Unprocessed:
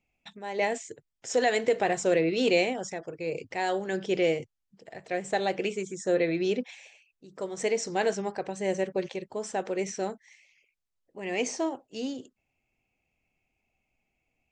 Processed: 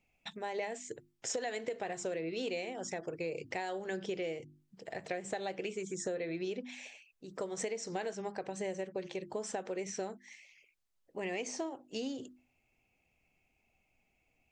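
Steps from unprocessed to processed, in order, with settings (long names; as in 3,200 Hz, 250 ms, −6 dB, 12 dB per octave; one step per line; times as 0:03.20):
mains-hum notches 50/100/150/200/250/300/350 Hz
downward compressor 10 to 1, threshold −37 dBFS, peak gain reduction 17.5 dB
level +2.5 dB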